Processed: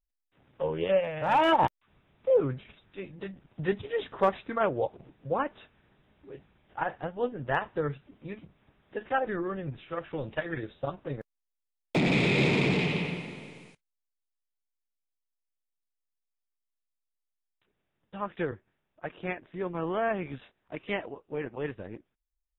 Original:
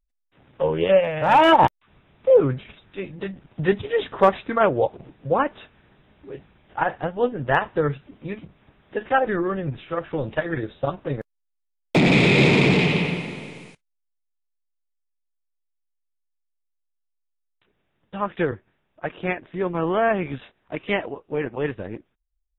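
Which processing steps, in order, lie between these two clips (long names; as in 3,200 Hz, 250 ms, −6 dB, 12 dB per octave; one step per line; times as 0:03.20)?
0:09.58–0:10.78: dynamic equaliser 2,700 Hz, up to +5 dB, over −44 dBFS, Q 1.2
level −8.5 dB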